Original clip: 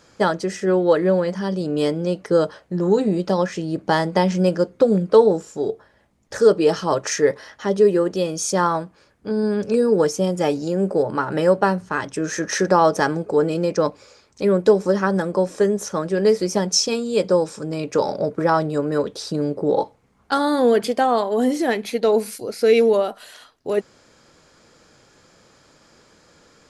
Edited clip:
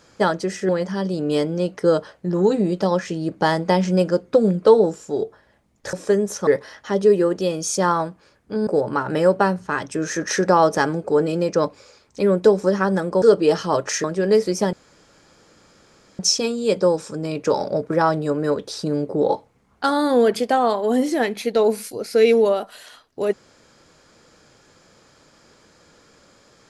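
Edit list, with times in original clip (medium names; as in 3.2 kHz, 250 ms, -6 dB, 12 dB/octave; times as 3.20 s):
0.69–1.16 s: delete
6.40–7.22 s: swap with 15.44–15.98 s
9.42–10.89 s: delete
16.67 s: insert room tone 1.46 s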